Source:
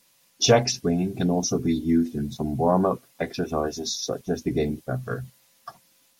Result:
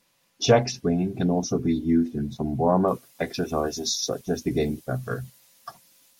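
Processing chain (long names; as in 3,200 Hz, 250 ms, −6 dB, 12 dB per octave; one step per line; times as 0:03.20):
high-shelf EQ 4,000 Hz −9 dB, from 0:02.88 +4.5 dB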